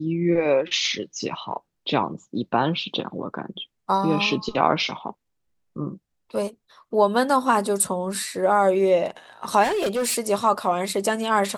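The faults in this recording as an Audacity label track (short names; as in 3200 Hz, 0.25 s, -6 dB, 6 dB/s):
9.630000	10.160000	clipped -20 dBFS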